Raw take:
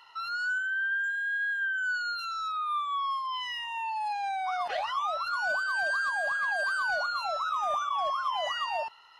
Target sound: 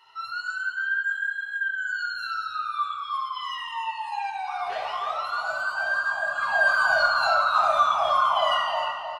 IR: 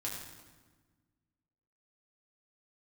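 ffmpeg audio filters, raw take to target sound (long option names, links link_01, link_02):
-filter_complex "[0:a]asplit=3[link_01][link_02][link_03];[link_01]afade=type=out:start_time=6.34:duration=0.02[link_04];[link_02]acontrast=83,afade=type=in:start_time=6.34:duration=0.02,afade=type=out:start_time=8.56:duration=0.02[link_05];[link_03]afade=type=in:start_time=8.56:duration=0.02[link_06];[link_04][link_05][link_06]amix=inputs=3:normalize=0,asplit=2[link_07][link_08];[link_08]adelay=311,lowpass=frequency=3200:poles=1,volume=-5.5dB,asplit=2[link_09][link_10];[link_10]adelay=311,lowpass=frequency=3200:poles=1,volume=0.42,asplit=2[link_11][link_12];[link_12]adelay=311,lowpass=frequency=3200:poles=1,volume=0.42,asplit=2[link_13][link_14];[link_14]adelay=311,lowpass=frequency=3200:poles=1,volume=0.42,asplit=2[link_15][link_16];[link_16]adelay=311,lowpass=frequency=3200:poles=1,volume=0.42[link_17];[link_07][link_09][link_11][link_13][link_15][link_17]amix=inputs=6:normalize=0[link_18];[1:a]atrim=start_sample=2205,afade=type=out:start_time=0.37:duration=0.01,atrim=end_sample=16758,asetrate=57330,aresample=44100[link_19];[link_18][link_19]afir=irnorm=-1:irlink=0,volume=2dB"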